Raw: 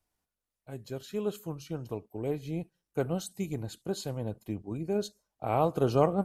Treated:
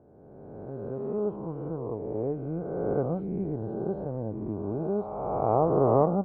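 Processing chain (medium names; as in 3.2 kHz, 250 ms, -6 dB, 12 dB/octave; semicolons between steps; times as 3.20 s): reverse spectral sustain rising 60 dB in 2.04 s; low-pass 1.1 kHz 24 dB/octave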